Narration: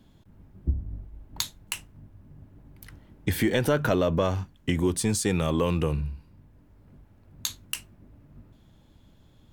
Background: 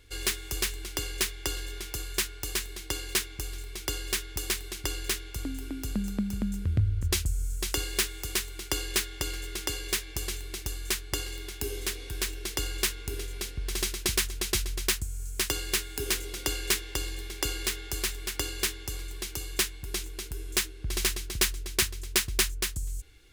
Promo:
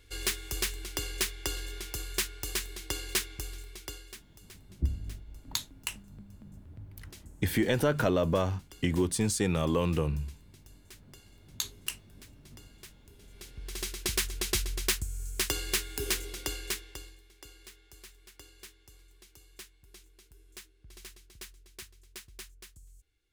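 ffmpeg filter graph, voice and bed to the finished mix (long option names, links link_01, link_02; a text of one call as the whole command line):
ffmpeg -i stem1.wav -i stem2.wav -filter_complex "[0:a]adelay=4150,volume=-3dB[link_01];[1:a]volume=19.5dB,afade=type=out:start_time=3.31:duration=0.91:silence=0.0891251,afade=type=in:start_time=13.19:duration=1.18:silence=0.0841395,afade=type=out:start_time=16.08:duration=1.12:silence=0.105925[link_02];[link_01][link_02]amix=inputs=2:normalize=0" out.wav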